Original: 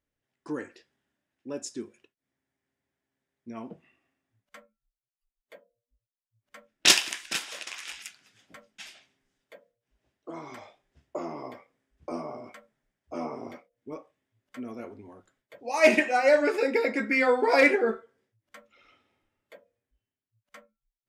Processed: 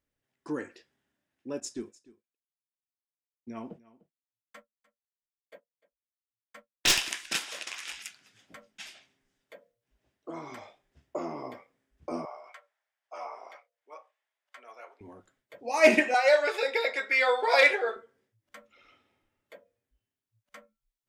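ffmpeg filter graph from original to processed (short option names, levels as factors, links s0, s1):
-filter_complex "[0:a]asettb=1/sr,asplit=3[s0][s1][s2];[s0]atrim=end=1.604[s3];[s1]atrim=start=1.6:end=7.12,asetpts=PTS-STARTPTS,afade=t=in:d=0.004:c=qsin,afade=t=out:st=5.516:d=0.004:c=qsin,agate=range=0.0224:threshold=0.00355:ratio=3:release=100:detection=peak,aeval=exprs='(tanh(7.08*val(0)+0.25)-tanh(0.25))/7.08':c=same,aecho=1:1:299:0.0944,atrim=end_sample=243432[s4];[s2]atrim=start=7.116[s5];[s3][s4]acrossfade=d=0.004:c1=hsin:c2=qsin[s6];[s6][s5]acrossfade=d=0.004:c1=qsin:c2=hsin,asettb=1/sr,asplit=3[s7][s8][s9];[s7]atrim=end=12.254[s10];[s8]atrim=start=12.25:end=15.01,asetpts=PTS-STARTPTS,afade=t=in:d=0.004:c=qsin,afade=t=out:st=2.756:d=0.004:c=qsin,highpass=f=680:w=0.5412,highpass=f=680:w=1.3066,highshelf=f=8500:g=-11.5[s11];[s9]atrim=start=15.006[s12];[s10][s11]acrossfade=d=0.004:c1=hsin:c2=qsin[s13];[s13][s12]acrossfade=d=0.004:c1=qsin:c2=hsin,asettb=1/sr,asplit=3[s14][s15][s16];[s14]atrim=end=16.144[s17];[s15]atrim=start=16.14:end=17.96,asetpts=PTS-STARTPTS,afade=t=in:d=0.004:c=qsin,afade=t=out:st=1.816:d=0.004:c=qsin,highpass=f=510:w=0.5412,highpass=f=510:w=1.3066,equalizer=f=3600:w=4:g=13.5[s18];[s16]atrim=start=17.956[s19];[s17][s18]acrossfade=d=0.004:c1=hsin:c2=qsin[s20];[s20][s19]acrossfade=d=0.004:c1=qsin:c2=hsin"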